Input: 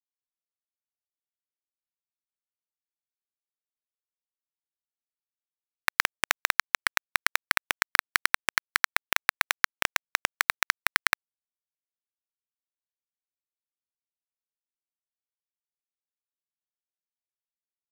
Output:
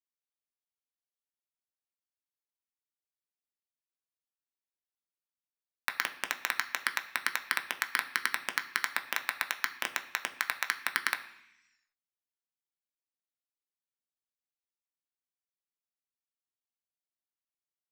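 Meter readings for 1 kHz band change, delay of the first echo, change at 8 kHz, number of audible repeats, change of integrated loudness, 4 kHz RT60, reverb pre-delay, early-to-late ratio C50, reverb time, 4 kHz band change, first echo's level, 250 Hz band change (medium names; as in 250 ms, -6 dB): -6.5 dB, no echo, -7.5 dB, no echo, -6.5 dB, 1.6 s, 3 ms, 13.5 dB, 0.80 s, -6.5 dB, no echo, -5.0 dB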